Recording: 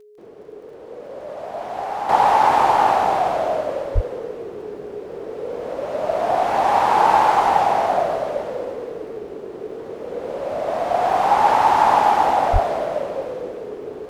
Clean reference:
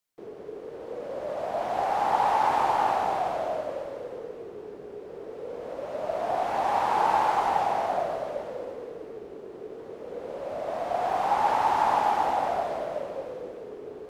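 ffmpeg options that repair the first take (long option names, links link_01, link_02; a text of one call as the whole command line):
ffmpeg -i in.wav -filter_complex "[0:a]adeclick=threshold=4,bandreject=frequency=420:width=30,asplit=3[link_01][link_02][link_03];[link_01]afade=type=out:start_time=3.94:duration=0.02[link_04];[link_02]highpass=frequency=140:width=0.5412,highpass=frequency=140:width=1.3066,afade=type=in:start_time=3.94:duration=0.02,afade=type=out:start_time=4.06:duration=0.02[link_05];[link_03]afade=type=in:start_time=4.06:duration=0.02[link_06];[link_04][link_05][link_06]amix=inputs=3:normalize=0,asplit=3[link_07][link_08][link_09];[link_07]afade=type=out:start_time=12.52:duration=0.02[link_10];[link_08]highpass=frequency=140:width=0.5412,highpass=frequency=140:width=1.3066,afade=type=in:start_time=12.52:duration=0.02,afade=type=out:start_time=12.64:duration=0.02[link_11];[link_09]afade=type=in:start_time=12.64:duration=0.02[link_12];[link_10][link_11][link_12]amix=inputs=3:normalize=0,asetnsamples=nb_out_samples=441:pad=0,asendcmd='2.09 volume volume -8.5dB',volume=0dB" out.wav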